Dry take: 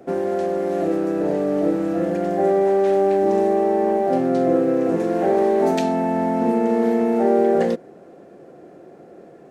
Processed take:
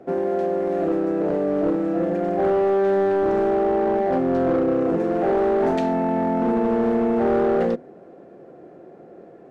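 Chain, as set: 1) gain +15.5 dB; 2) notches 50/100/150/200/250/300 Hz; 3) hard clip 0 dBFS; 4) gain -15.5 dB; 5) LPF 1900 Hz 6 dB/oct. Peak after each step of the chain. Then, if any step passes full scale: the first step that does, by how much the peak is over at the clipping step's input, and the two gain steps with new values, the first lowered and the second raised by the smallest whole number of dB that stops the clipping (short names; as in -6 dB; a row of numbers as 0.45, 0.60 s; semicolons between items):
+8.5, +8.5, 0.0, -15.5, -15.5 dBFS; step 1, 8.5 dB; step 1 +6.5 dB, step 4 -6.5 dB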